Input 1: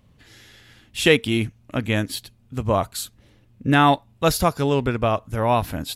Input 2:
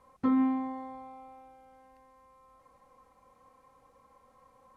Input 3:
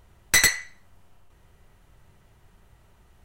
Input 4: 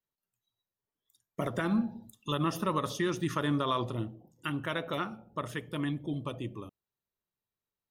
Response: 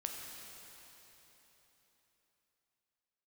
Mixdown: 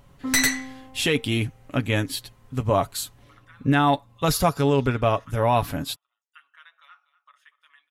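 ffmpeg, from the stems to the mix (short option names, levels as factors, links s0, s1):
-filter_complex "[0:a]volume=0.891[s0];[1:a]volume=0.596[s1];[2:a]volume=0.891[s2];[3:a]highpass=f=1300:w=0.5412,highpass=f=1300:w=1.3066,lowpass=f=2300:p=1,adelay=1900,volume=0.266,asplit=2[s3][s4];[s4]volume=0.15,aecho=0:1:243:1[s5];[s0][s1][s2][s3][s5]amix=inputs=5:normalize=0,aecho=1:1:7.1:0.43,alimiter=limit=0.335:level=0:latency=1:release=15"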